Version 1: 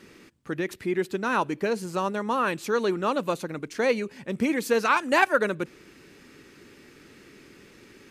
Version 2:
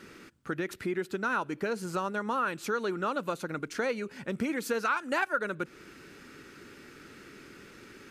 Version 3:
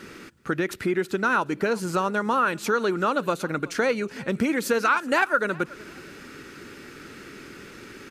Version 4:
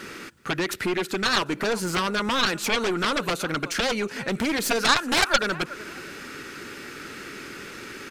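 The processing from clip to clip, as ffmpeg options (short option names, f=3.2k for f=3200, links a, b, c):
-af "equalizer=f=1.4k:w=4.8:g=9,acompressor=threshold=-31dB:ratio=2.5"
-af "aecho=1:1:372|744:0.075|0.0217,volume=7.5dB"
-af "lowshelf=f=460:g=-6.5,aeval=exprs='0.355*(cos(1*acos(clip(val(0)/0.355,-1,1)))-cos(1*PI/2))+0.0447*(cos(6*acos(clip(val(0)/0.355,-1,1)))-cos(6*PI/2))+0.158*(cos(7*acos(clip(val(0)/0.355,-1,1)))-cos(7*PI/2))':c=same"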